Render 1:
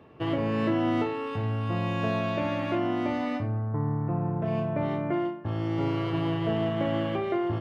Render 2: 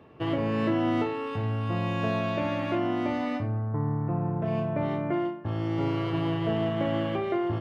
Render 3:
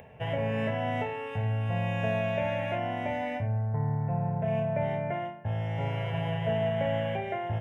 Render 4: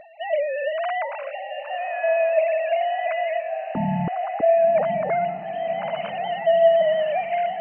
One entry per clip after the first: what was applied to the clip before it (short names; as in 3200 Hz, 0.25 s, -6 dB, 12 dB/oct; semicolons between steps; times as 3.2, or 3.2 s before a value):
nothing audible
upward compressor, threshold -43 dBFS; fixed phaser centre 1200 Hz, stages 6; gain +2 dB
sine-wave speech; diffused feedback echo 1.099 s, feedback 53%, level -10 dB; gain +7 dB; MP2 48 kbps 16000 Hz